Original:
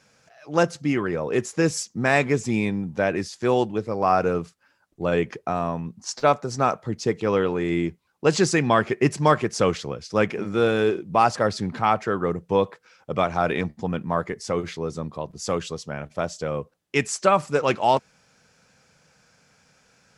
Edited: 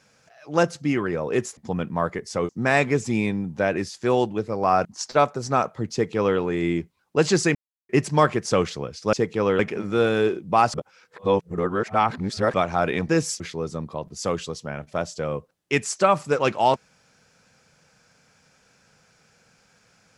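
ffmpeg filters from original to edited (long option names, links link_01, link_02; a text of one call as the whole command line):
ffmpeg -i in.wav -filter_complex "[0:a]asplit=12[link_01][link_02][link_03][link_04][link_05][link_06][link_07][link_08][link_09][link_10][link_11][link_12];[link_01]atrim=end=1.572[link_13];[link_02]atrim=start=13.708:end=14.632[link_14];[link_03]atrim=start=1.878:end=4.242[link_15];[link_04]atrim=start=5.928:end=8.63,asetpts=PTS-STARTPTS,afade=type=out:start_time=2.698:duration=0.004:curve=hsin[link_16];[link_05]atrim=start=8.63:end=8.97,asetpts=PTS-STARTPTS,volume=0[link_17];[link_06]atrim=start=8.97:end=10.212,asetpts=PTS-STARTPTS,afade=type=in:duration=0.004:curve=hsin[link_18];[link_07]atrim=start=6.998:end=7.462[link_19];[link_08]atrim=start=10.208:end=11.362[link_20];[link_09]atrim=start=11.358:end=13.162,asetpts=PTS-STARTPTS,areverse[link_21];[link_10]atrim=start=13.158:end=13.712[link_22];[link_11]atrim=start=1.568:end=1.882[link_23];[link_12]atrim=start=14.628[link_24];[link_13][link_14]acrossfade=duration=0.004:curve1=hsin:curve2=hsin[link_25];[link_25][link_15]acrossfade=duration=0.004:curve1=hsin:curve2=hsin[link_26];[link_16][link_17][link_18]concat=n=3:v=0:a=1[link_27];[link_26][link_27]acrossfade=duration=0.004:curve1=hsin:curve2=hsin[link_28];[link_28][link_19]acrossfade=duration=0.004:curve1=hsin:curve2=hsin[link_29];[link_29][link_20]acrossfade=duration=0.004:curve1=hsin:curve2=hsin[link_30];[link_30][link_21]acrossfade=duration=0.004:curve1=hsin:curve2=hsin[link_31];[link_31][link_22]acrossfade=duration=0.004:curve1=hsin:curve2=hsin[link_32];[link_32][link_23]acrossfade=duration=0.004:curve1=hsin:curve2=hsin[link_33];[link_33][link_24]acrossfade=duration=0.004:curve1=hsin:curve2=hsin" out.wav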